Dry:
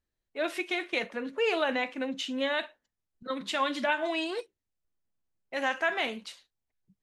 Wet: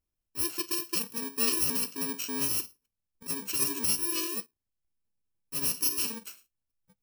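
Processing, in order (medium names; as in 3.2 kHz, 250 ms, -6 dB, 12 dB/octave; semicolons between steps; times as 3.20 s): bit-reversed sample order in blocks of 64 samples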